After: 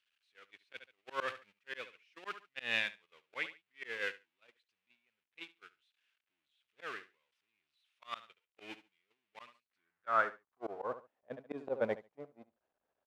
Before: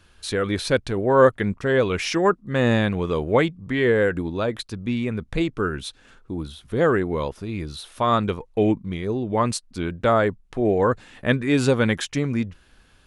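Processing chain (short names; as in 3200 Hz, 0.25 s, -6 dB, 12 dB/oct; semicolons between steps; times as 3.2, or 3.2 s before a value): zero-crossing step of -22.5 dBFS; gate -14 dBFS, range -57 dB; in parallel at +1.5 dB: compressor 8:1, threshold -29 dBFS, peak gain reduction 19.5 dB; on the sum: band-pass sweep 2600 Hz -> 630 Hz, 9.47–11.08; on a send: feedback echo 71 ms, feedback 15%, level -18.5 dB; on the sum: auto swell 0.281 s; gain +6 dB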